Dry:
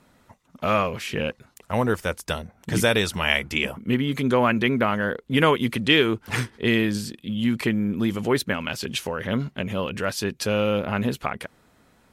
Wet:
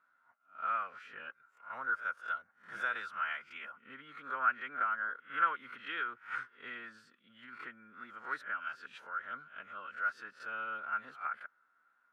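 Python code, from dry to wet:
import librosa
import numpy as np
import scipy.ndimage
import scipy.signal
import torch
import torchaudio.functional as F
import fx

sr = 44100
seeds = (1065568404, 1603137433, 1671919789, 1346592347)

y = fx.spec_swells(x, sr, rise_s=0.31)
y = fx.pitch_keep_formants(y, sr, semitones=1.0)
y = fx.bandpass_q(y, sr, hz=1400.0, q=12.0)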